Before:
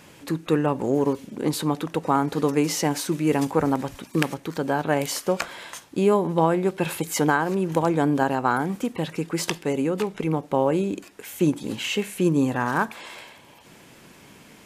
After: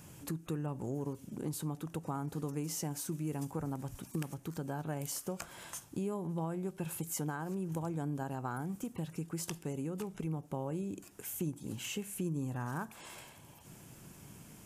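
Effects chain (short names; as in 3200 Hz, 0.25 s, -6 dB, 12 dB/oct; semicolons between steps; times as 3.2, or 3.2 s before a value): ten-band EQ 125 Hz +3 dB, 250 Hz -6 dB, 500 Hz -9 dB, 1000 Hz -6 dB, 2000 Hz -11 dB, 4000 Hz -11 dB; compressor 2.5:1, threshold -40 dBFS, peak gain reduction 13 dB; gain +1 dB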